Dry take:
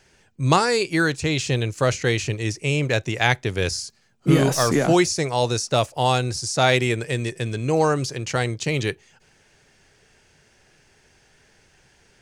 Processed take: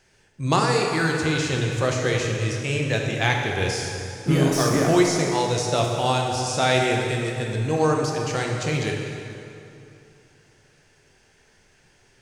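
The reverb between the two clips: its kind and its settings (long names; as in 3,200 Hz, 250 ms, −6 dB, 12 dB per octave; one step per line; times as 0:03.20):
dense smooth reverb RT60 2.8 s, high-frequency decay 0.75×, DRR 0 dB
level −4 dB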